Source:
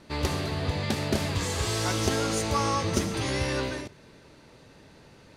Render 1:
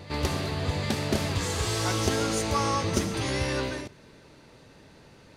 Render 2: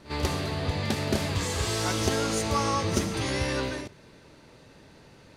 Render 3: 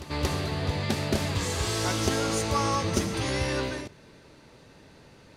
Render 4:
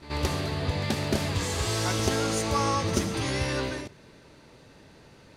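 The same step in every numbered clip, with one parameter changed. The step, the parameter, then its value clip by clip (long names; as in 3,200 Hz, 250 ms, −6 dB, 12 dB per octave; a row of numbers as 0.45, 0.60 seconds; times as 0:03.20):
backwards echo, delay time: 763, 50, 231, 83 milliseconds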